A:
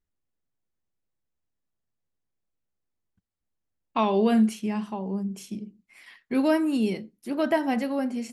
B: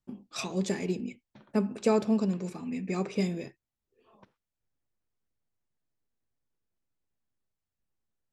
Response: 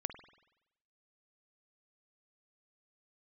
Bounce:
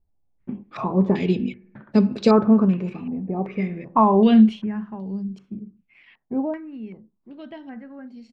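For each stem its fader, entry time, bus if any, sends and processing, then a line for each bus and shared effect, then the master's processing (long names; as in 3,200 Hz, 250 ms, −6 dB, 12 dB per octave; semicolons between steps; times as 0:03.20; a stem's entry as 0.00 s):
0:04.41 −2.5 dB → 0:04.73 −10 dB → 0:06.41 −10 dB → 0:06.61 −20.5 dB, 0.00 s, no send, low-shelf EQ 180 Hz +6.5 dB
+1.0 dB, 0.40 s, send −10 dB, automatic ducking −17 dB, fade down 1.40 s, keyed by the first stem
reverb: on, RT60 0.90 s, pre-delay 47 ms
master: low-shelf EQ 350 Hz +11 dB; low-pass on a step sequencer 2.6 Hz 800–4,300 Hz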